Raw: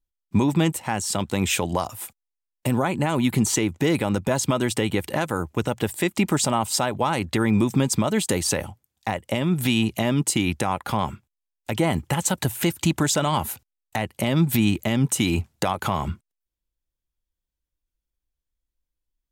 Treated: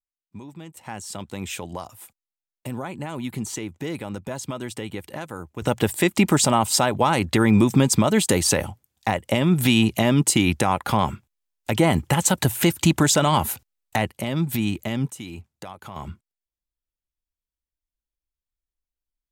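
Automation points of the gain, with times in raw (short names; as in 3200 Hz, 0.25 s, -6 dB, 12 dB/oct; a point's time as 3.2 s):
-20 dB
from 0.77 s -9 dB
from 5.62 s +3.5 dB
from 14.12 s -4 dB
from 15.1 s -14.5 dB
from 15.96 s -7.5 dB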